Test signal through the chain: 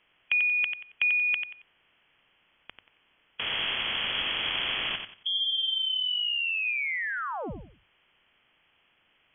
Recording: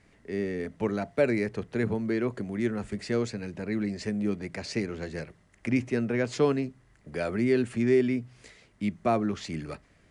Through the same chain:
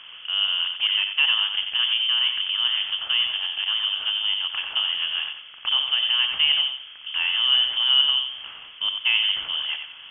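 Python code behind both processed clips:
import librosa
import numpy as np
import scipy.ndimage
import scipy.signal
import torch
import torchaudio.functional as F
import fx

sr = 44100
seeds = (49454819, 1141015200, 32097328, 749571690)

p1 = fx.bin_compress(x, sr, power=0.6)
p2 = fx.high_shelf(p1, sr, hz=2200.0, db=-9.0)
p3 = fx.freq_invert(p2, sr, carrier_hz=3300)
p4 = fx.hum_notches(p3, sr, base_hz=50, count=2)
p5 = p4 + fx.echo_feedback(p4, sr, ms=91, feedback_pct=28, wet_db=-7, dry=0)
y = F.gain(torch.from_numpy(p5), 1.0).numpy()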